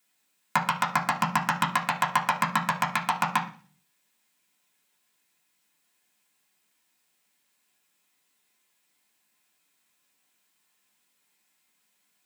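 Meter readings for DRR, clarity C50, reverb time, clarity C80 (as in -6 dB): -3.5 dB, 11.0 dB, 0.40 s, 15.5 dB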